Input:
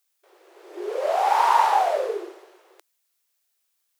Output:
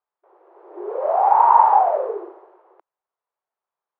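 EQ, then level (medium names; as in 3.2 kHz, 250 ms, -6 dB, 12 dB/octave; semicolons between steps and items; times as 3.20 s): resonant low-pass 960 Hz, resonance Q 2.2; -1.0 dB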